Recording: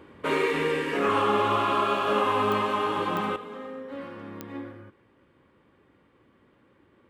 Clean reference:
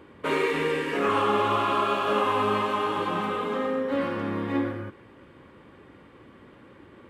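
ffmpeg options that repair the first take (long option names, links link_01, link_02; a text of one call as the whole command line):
ffmpeg -i in.wav -af "adeclick=threshold=4,asetnsamples=nb_out_samples=441:pad=0,asendcmd='3.36 volume volume 11dB',volume=0dB" out.wav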